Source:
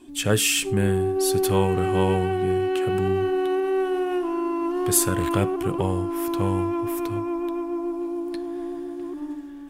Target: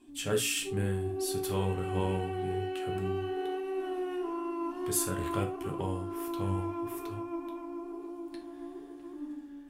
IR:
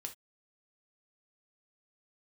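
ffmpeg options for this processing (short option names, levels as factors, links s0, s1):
-filter_complex "[0:a]flanger=delay=8.4:depth=9.2:regen=74:speed=1.1:shape=sinusoidal[s0];[1:a]atrim=start_sample=2205[s1];[s0][s1]afir=irnorm=-1:irlink=0,volume=0.75"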